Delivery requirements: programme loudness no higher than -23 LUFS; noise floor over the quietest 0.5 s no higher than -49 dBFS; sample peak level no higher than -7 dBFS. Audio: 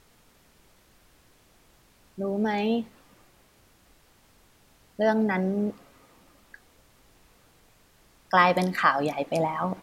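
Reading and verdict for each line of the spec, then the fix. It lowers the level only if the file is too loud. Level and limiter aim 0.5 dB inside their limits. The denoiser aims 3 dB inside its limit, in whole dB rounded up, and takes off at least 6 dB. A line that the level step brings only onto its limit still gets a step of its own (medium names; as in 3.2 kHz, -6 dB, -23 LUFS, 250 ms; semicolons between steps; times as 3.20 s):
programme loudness -25.5 LUFS: pass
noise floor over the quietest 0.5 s -60 dBFS: pass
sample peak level -5.5 dBFS: fail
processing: peak limiter -7.5 dBFS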